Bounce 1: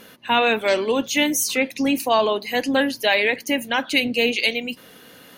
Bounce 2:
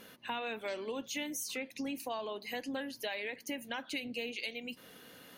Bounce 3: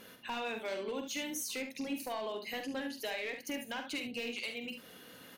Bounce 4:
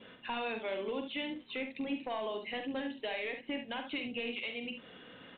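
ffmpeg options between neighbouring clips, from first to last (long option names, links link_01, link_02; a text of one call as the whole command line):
ffmpeg -i in.wav -af "acompressor=threshold=-29dB:ratio=4,volume=-8.5dB" out.wav
ffmpeg -i in.wav -filter_complex "[0:a]asoftclip=type=hard:threshold=-32.5dB,asplit=2[link_01][link_02];[link_02]aecho=0:1:46|72:0.376|0.355[link_03];[link_01][link_03]amix=inputs=2:normalize=0" out.wav
ffmpeg -i in.wav -af "adynamicequalizer=threshold=0.001:dfrequency=1500:dqfactor=3.2:tfrequency=1500:tqfactor=3.2:attack=5:release=100:ratio=0.375:range=2.5:mode=cutabove:tftype=bell,volume=1.5dB" -ar 8000 -c:a pcm_mulaw out.wav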